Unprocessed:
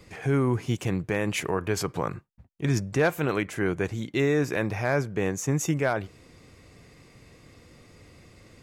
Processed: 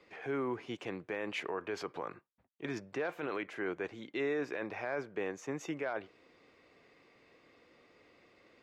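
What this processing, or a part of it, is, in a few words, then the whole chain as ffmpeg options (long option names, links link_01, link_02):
DJ mixer with the lows and highs turned down: -filter_complex "[0:a]acrossover=split=270 4400:gain=0.0891 1 0.0794[link_01][link_02][link_03];[link_01][link_02][link_03]amix=inputs=3:normalize=0,alimiter=limit=-20.5dB:level=0:latency=1:release=11,volume=-6.5dB"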